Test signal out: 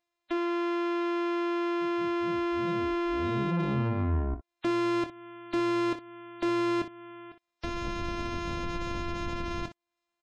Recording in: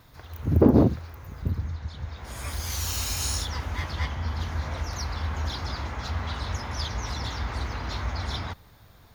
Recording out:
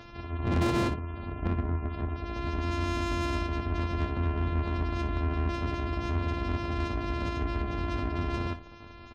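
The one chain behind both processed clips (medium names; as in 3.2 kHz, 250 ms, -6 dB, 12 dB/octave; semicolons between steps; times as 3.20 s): sorted samples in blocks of 128 samples; treble shelf 3.9 kHz -5 dB; in parallel at +0.5 dB: compression, threshold -33 dBFS; on the sum: spectral gate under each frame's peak -25 dB strong; saturation -22 dBFS; on a send: early reflections 24 ms -9.5 dB, 60 ms -12.5 dB; on the sum: tape noise reduction on one side only encoder only; trim -1.5 dB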